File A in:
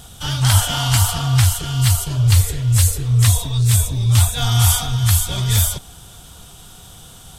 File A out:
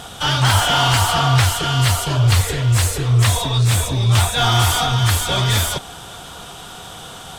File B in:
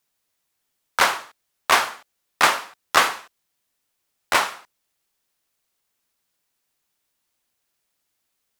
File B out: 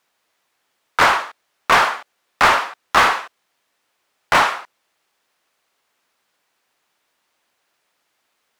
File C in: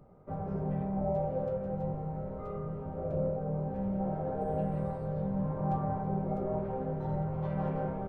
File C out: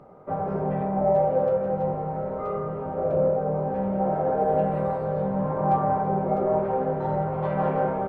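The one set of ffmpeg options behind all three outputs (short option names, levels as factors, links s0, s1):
-filter_complex "[0:a]asplit=2[s0][s1];[s1]highpass=f=720:p=1,volume=12.6,asoftclip=type=tanh:threshold=0.841[s2];[s0][s2]amix=inputs=2:normalize=0,lowpass=f=1500:p=1,volume=0.501"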